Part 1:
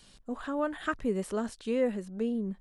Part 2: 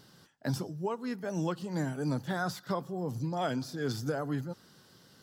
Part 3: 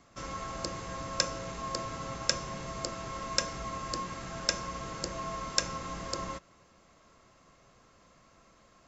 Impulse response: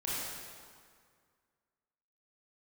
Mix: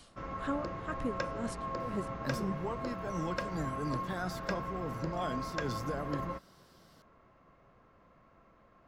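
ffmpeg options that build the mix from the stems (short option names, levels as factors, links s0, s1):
-filter_complex "[0:a]aeval=exprs='val(0)*pow(10,-28*(0.5-0.5*cos(2*PI*2*n/s))/20)':c=same,volume=1.12[s0];[1:a]adelay=1800,volume=0.562[s1];[2:a]lowpass=1800,volume=0.944[s2];[s0][s1][s2]amix=inputs=3:normalize=0"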